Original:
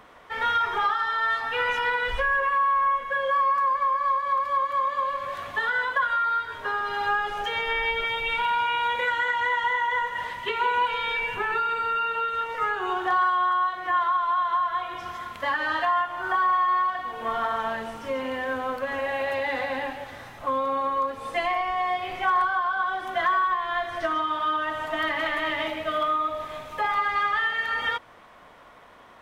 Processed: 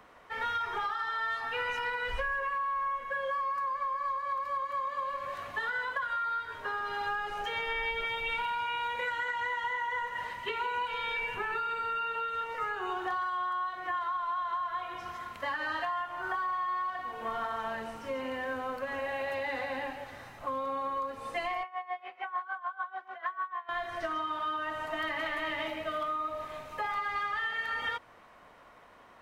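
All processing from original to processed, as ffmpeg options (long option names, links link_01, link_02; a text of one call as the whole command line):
ffmpeg -i in.wav -filter_complex "[0:a]asettb=1/sr,asplit=3[link_01][link_02][link_03];[link_01]atrim=end=21.634[link_04];[link_02]atrim=start=21.63:end=23.69,asetpts=PTS-STARTPTS,afade=type=in:duration=0.004:curve=qsin,afade=type=out:start_time=2.056:duration=0.004:curve=qsin,aeval=exprs='val(0)+0.00251*(sin(2*PI*50*n/s)+sin(2*PI*2*50*n/s)/2+sin(2*PI*3*50*n/s)/3+sin(2*PI*4*50*n/s)/4+sin(2*PI*5*50*n/s)/5)':channel_layout=same,highpass=560,lowpass=2600,aeval=exprs='val(0)*pow(10,-19*(0.5-0.5*cos(2*PI*6.7*n/s))/20)':channel_layout=same[link_05];[link_03]atrim=start=23.686[link_06];[link_04][link_05]acrossfade=duration=0.004:curve1=hsin:curve2=qsin[link_07];[link_07][link_06]acrossfade=duration=0.004:curve1=qsin:curve2=hsin,bandreject=frequency=3400:width=12,acrossover=split=170|3000[link_08][link_09][link_10];[link_09]acompressor=threshold=-25dB:ratio=6[link_11];[link_08][link_11][link_10]amix=inputs=3:normalize=0,volume=-5.5dB" out.wav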